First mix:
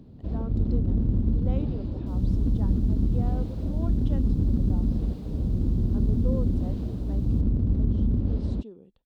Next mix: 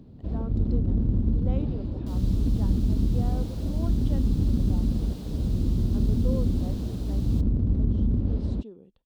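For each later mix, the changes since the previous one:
second sound +11.5 dB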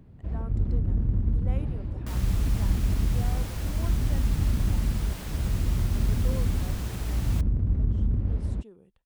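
speech: remove high-frequency loss of the air 95 metres
second sound +11.5 dB
master: add octave-band graphic EQ 250/500/2,000/4,000 Hz −8/−4/+8/−10 dB

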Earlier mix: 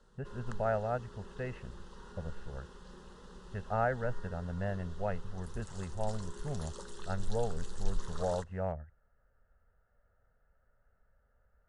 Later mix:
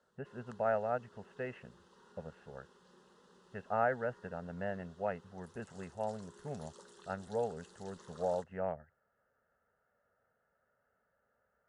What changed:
background −8.5 dB
master: add high-pass filter 200 Hz 12 dB per octave

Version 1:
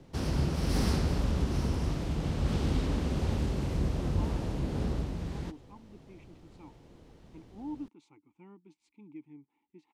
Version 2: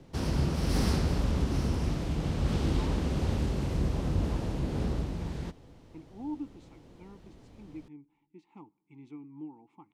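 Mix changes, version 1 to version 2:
speech: entry −1.40 s
reverb: on

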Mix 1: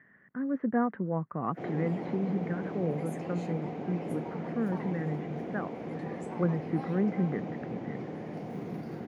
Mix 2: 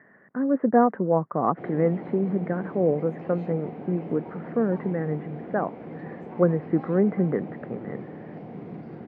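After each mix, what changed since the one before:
speech: add parametric band 620 Hz +14 dB 2.7 octaves
master: add high-frequency loss of the air 290 metres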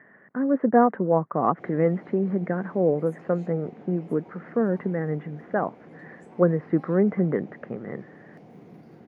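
background −9.5 dB
master: remove high-frequency loss of the air 290 metres

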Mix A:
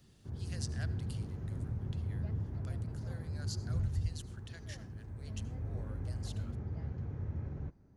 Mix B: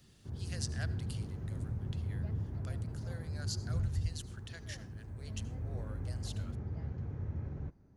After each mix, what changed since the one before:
speech +3.5 dB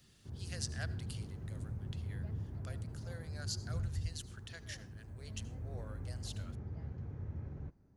background −4.0 dB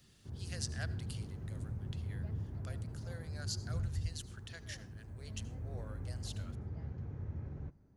background: send on

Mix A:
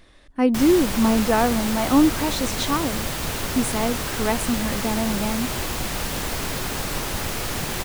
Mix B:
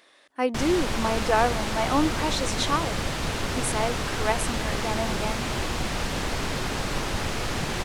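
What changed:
speech: add high-pass filter 480 Hz 12 dB per octave
background: add high-frequency loss of the air 60 metres

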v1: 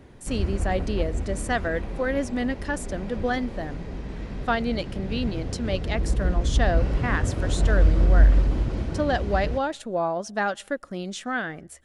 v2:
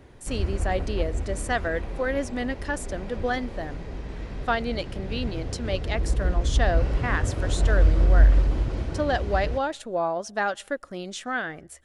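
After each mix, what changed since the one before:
master: add parametric band 200 Hz −5.5 dB 0.96 octaves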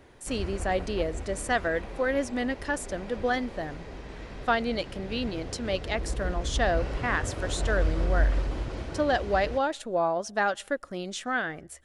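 background: add low-shelf EQ 280 Hz −8.5 dB

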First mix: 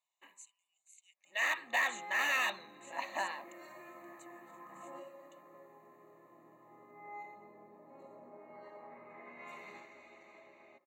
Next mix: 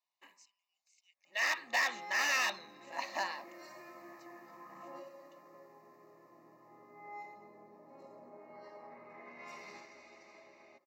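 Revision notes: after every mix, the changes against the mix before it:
speech: add high-frequency loss of the air 170 metres
master: remove Butterworth band-reject 5,200 Hz, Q 2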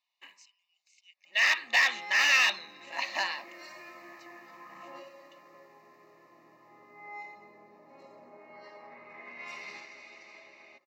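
master: add parametric band 2,900 Hz +12 dB 1.7 octaves

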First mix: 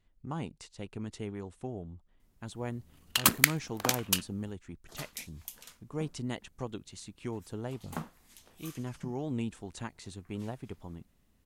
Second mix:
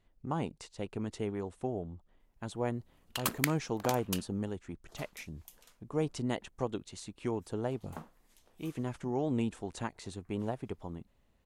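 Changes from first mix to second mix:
background −10.5 dB
master: add parametric band 590 Hz +6 dB 2.2 octaves

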